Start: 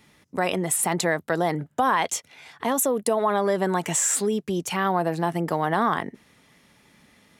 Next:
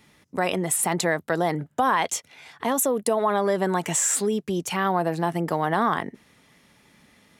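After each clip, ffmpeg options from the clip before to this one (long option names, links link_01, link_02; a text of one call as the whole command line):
ffmpeg -i in.wav -af anull out.wav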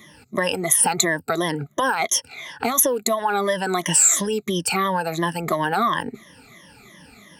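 ffmpeg -i in.wav -filter_complex "[0:a]afftfilt=real='re*pow(10,20/40*sin(2*PI*(1.2*log(max(b,1)*sr/1024/100)/log(2)-(-2.9)*(pts-256)/sr)))':imag='im*pow(10,20/40*sin(2*PI*(1.2*log(max(b,1)*sr/1024/100)/log(2)-(-2.9)*(pts-256)/sr)))':win_size=1024:overlap=0.75,acrossover=split=1400|5100[link_01][link_02][link_03];[link_01]acompressor=threshold=-28dB:ratio=4[link_04];[link_02]acompressor=threshold=-31dB:ratio=4[link_05];[link_03]acompressor=threshold=-20dB:ratio=4[link_06];[link_04][link_05][link_06]amix=inputs=3:normalize=0,volume=5.5dB" out.wav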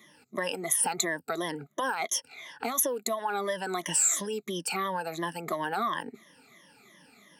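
ffmpeg -i in.wav -af "highpass=200,volume=-9dB" out.wav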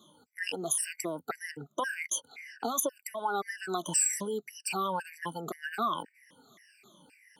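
ffmpeg -i in.wav -af "afftfilt=real='re*gt(sin(2*PI*1.9*pts/sr)*(1-2*mod(floor(b*sr/1024/1500),2)),0)':imag='im*gt(sin(2*PI*1.9*pts/sr)*(1-2*mod(floor(b*sr/1024/1500),2)),0)':win_size=1024:overlap=0.75" out.wav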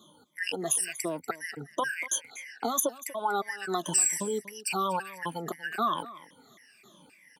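ffmpeg -i in.wav -af "aecho=1:1:240:0.133,volume=2.5dB" out.wav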